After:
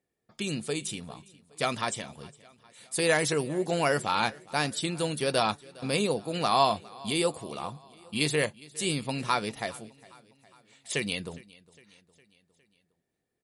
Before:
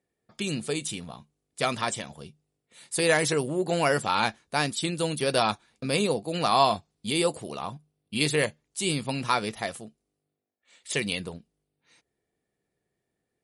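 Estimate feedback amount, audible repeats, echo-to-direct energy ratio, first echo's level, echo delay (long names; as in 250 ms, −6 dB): 55%, 3, −21.0 dB, −22.5 dB, 409 ms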